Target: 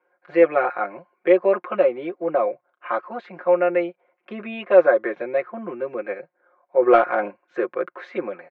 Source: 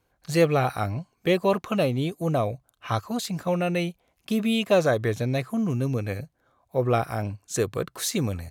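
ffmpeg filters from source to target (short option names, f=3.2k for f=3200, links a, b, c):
-filter_complex "[0:a]highpass=f=300:w=0.5412,highpass=f=300:w=1.3066,equalizer=f=360:t=q:w=4:g=3,equalizer=f=550:t=q:w=4:g=7,equalizer=f=980:t=q:w=4:g=5,equalizer=f=1.5k:t=q:w=4:g=7,equalizer=f=2.2k:t=q:w=4:g=5,lowpass=f=2.2k:w=0.5412,lowpass=f=2.2k:w=1.3066,asplit=3[a][b][c];[a]afade=t=out:st=6.81:d=0.02[d];[b]acontrast=55,afade=t=in:st=6.81:d=0.02,afade=t=out:st=7.29:d=0.02[e];[c]afade=t=in:st=7.29:d=0.02[f];[d][e][f]amix=inputs=3:normalize=0,aecho=1:1:5.6:0.79,volume=-2dB"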